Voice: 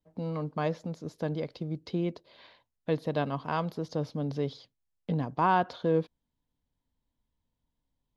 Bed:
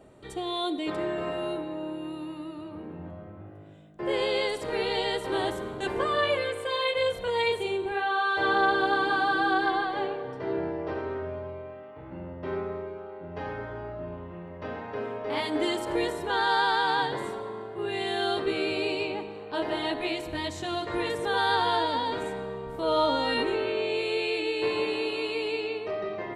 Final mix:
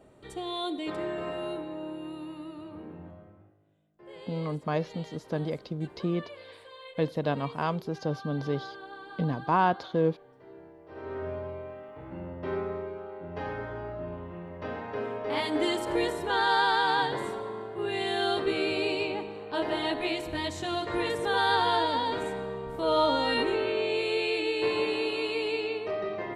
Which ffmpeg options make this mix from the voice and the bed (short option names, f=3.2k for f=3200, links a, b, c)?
-filter_complex "[0:a]adelay=4100,volume=1dB[a];[1:a]volume=16.5dB,afade=t=out:st=2.88:d=0.69:silence=0.149624,afade=t=in:st=10.88:d=0.4:silence=0.105925[b];[a][b]amix=inputs=2:normalize=0"